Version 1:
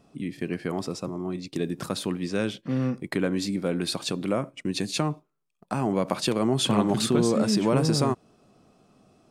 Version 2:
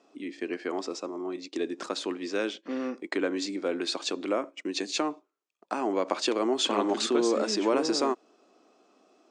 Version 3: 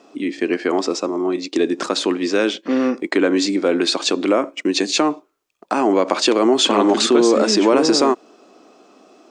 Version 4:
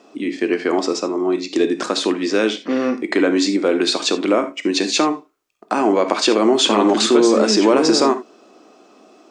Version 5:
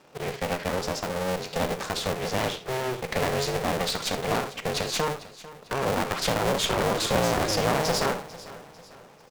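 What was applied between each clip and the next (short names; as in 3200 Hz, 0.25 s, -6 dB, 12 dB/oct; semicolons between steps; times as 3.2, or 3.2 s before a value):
elliptic band-pass 300–7100 Hz, stop band 40 dB
low shelf 110 Hz +10 dB; in parallel at +1 dB: limiter -22 dBFS, peak gain reduction 11.5 dB; on the sum: gain +6.5 dB
non-linear reverb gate 0.1 s flat, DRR 9 dB
cycle switcher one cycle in 2, inverted; one-sided clip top -24.5 dBFS; feedback echo 0.447 s, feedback 43%, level -17.5 dB; gain -7 dB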